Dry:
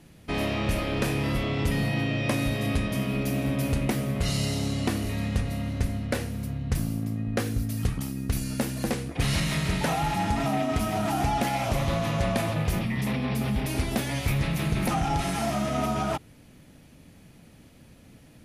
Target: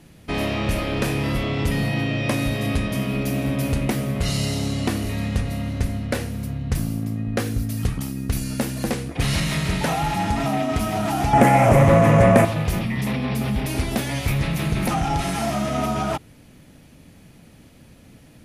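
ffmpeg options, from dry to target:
ffmpeg -i in.wav -filter_complex "[0:a]asettb=1/sr,asplit=3[link_01][link_02][link_03];[link_01]atrim=end=11.334[link_04];[link_02]atrim=start=11.33:end=12.45,asetpts=PTS-STARTPTS,afade=type=in:duration=0.004:curve=qsin,afade=type=out:start_time=1.116:duration=0.004:curve=qsin,equalizer=frequency=125:width_type=o:width=1:gain=10,equalizer=frequency=250:width_type=o:width=1:gain=6,equalizer=frequency=500:width_type=o:width=1:gain=12,equalizer=frequency=1000:width_type=o:width=1:gain=5,equalizer=frequency=2000:width_type=o:width=1:gain=10,equalizer=frequency=4000:width_type=o:width=1:gain=-12,equalizer=frequency=8000:width_type=o:width=1:gain=7[link_05];[link_03]atrim=start=12.446[link_06];[link_04][link_05]acrossfade=duration=0.004:curve1=hsin:curve2=qsin[link_07];[link_07][link_06]acrossfade=duration=0.004:curve1=qsin:curve2=hsin,acontrast=58,volume=-2.5dB" out.wav

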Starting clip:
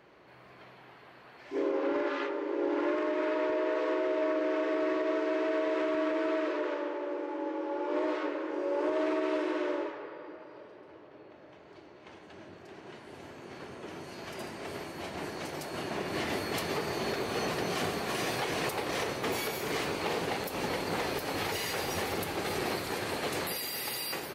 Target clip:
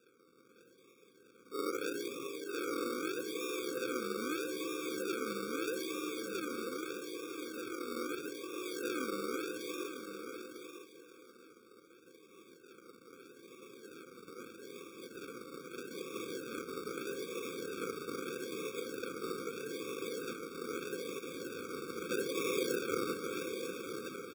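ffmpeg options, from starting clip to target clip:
ffmpeg -i in.wav -filter_complex "[0:a]asplit=3[link_01][link_02][link_03];[link_01]afade=type=out:start_time=22.09:duration=0.02[link_04];[link_02]equalizer=frequency=760:width=0.34:gain=10,afade=type=in:start_time=22.09:duration=0.02,afade=type=out:start_time=23.12:duration=0.02[link_05];[link_03]afade=type=in:start_time=23.12:duration=0.02[link_06];[link_04][link_05][link_06]amix=inputs=3:normalize=0,asplit=2[link_07][link_08];[link_08]aecho=0:1:710:0.224[link_09];[link_07][link_09]amix=inputs=2:normalize=0,acrusher=samples=41:mix=1:aa=0.000001:lfo=1:lforange=24.6:lforate=0.79,highpass=360,asplit=2[link_10][link_11];[link_11]aecho=0:1:951:0.355[link_12];[link_10][link_12]amix=inputs=2:normalize=0,afftfilt=real='re*eq(mod(floor(b*sr/1024/540),2),0)':imag='im*eq(mod(floor(b*sr/1024/540),2),0)':win_size=1024:overlap=0.75,volume=-4dB" out.wav

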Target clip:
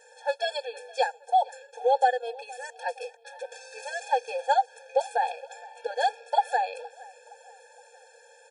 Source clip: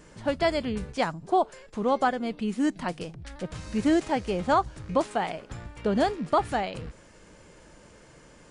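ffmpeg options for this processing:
ffmpeg -i in.wav -filter_complex "[0:a]aecho=1:1:2.4:0.97,asplit=2[link_01][link_02];[link_02]adelay=467,lowpass=frequency=4900:poles=1,volume=-21.5dB,asplit=2[link_03][link_04];[link_04]adelay=467,lowpass=frequency=4900:poles=1,volume=0.49,asplit=2[link_05][link_06];[link_06]adelay=467,lowpass=frequency=4900:poles=1,volume=0.49[link_07];[link_03][link_05][link_07]amix=inputs=3:normalize=0[link_08];[link_01][link_08]amix=inputs=2:normalize=0,afftfilt=real='re*eq(mod(floor(b*sr/1024/460),2),1)':imag='im*eq(mod(floor(b*sr/1024/460),2),1)':win_size=1024:overlap=0.75" out.wav

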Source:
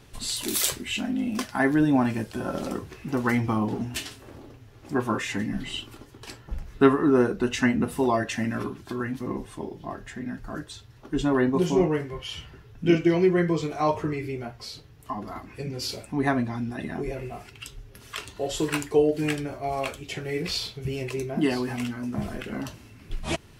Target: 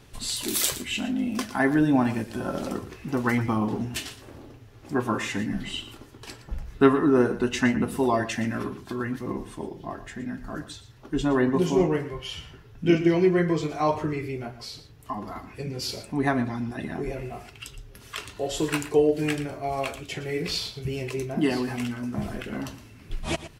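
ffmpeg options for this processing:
ffmpeg -i in.wav -af "aecho=1:1:116:0.2" out.wav

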